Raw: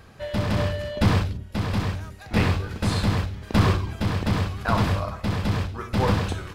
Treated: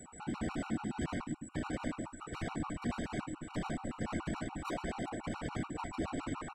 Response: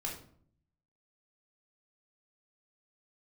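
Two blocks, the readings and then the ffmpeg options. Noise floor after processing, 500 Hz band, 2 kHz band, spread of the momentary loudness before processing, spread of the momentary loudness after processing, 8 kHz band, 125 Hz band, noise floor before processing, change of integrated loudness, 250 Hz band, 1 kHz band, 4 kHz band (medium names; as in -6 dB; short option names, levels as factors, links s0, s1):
-53 dBFS, -14.0 dB, -13.5 dB, 6 LU, 3 LU, -7.0 dB, -20.5 dB, -43 dBFS, -15.0 dB, -11.0 dB, -12.5 dB, -18.0 dB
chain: -filter_complex "[0:a]aemphasis=mode=reproduction:type=75fm,bandreject=f=4500:w=5.7,acrossover=split=3700[s0][s1];[s1]acompressor=threshold=0.002:ratio=4:attack=1:release=60[s2];[s0][s2]amix=inputs=2:normalize=0,bass=f=250:g=-11,treble=f=4000:g=-11,acompressor=threshold=0.0398:ratio=12,aeval=exprs='(tanh(79.4*val(0)+0.65)-tanh(0.65))/79.4':c=same,aeval=exprs='val(0)+0.00126*sin(2*PI*8200*n/s)':c=same,afftfilt=real='hypot(re,im)*cos(2*PI*random(0))':imag='hypot(re,im)*sin(2*PI*random(1))':win_size=512:overlap=0.75,afreqshift=-350,asplit=2[s3][s4];[s4]adelay=13,volume=0.2[s5];[s3][s5]amix=inputs=2:normalize=0,asplit=2[s6][s7];[s7]adelay=112,lowpass=f=880:p=1,volume=0.0891,asplit=2[s8][s9];[s9]adelay=112,lowpass=f=880:p=1,volume=0.18[s10];[s6][s8][s10]amix=inputs=3:normalize=0,afftfilt=real='re*gt(sin(2*PI*7*pts/sr)*(1-2*mod(floor(b*sr/1024/750),2)),0)':imag='im*gt(sin(2*PI*7*pts/sr)*(1-2*mod(floor(b*sr/1024/750),2)),0)':win_size=1024:overlap=0.75,volume=3.55"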